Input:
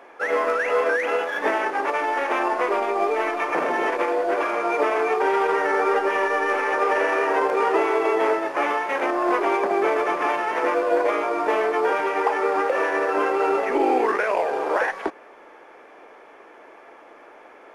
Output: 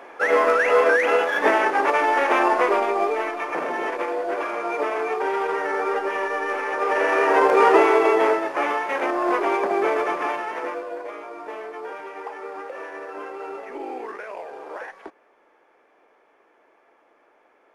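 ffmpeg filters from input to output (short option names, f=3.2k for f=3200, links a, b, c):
-af "volume=13.5dB,afade=t=out:st=2.52:d=0.81:silence=0.421697,afade=t=in:st=6.76:d=0.9:silence=0.334965,afade=t=out:st=7.66:d=0.83:silence=0.473151,afade=t=out:st=9.99:d=0.96:silence=0.237137"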